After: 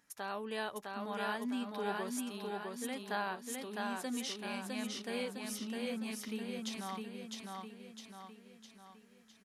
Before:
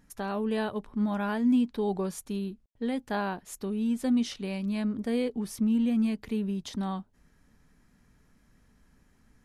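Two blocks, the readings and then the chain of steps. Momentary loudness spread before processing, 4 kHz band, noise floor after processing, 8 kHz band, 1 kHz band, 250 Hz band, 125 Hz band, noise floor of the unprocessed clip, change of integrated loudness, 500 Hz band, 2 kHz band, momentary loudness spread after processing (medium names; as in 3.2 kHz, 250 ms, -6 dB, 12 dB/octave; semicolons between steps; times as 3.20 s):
9 LU, +0.5 dB, -63 dBFS, +0.5 dB, -3.0 dB, -13.5 dB, no reading, -65 dBFS, -10.0 dB, -7.5 dB, -1.0 dB, 14 LU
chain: high-pass 1.1 kHz 6 dB/octave; feedback delay 657 ms, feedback 50%, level -3 dB; trim -1.5 dB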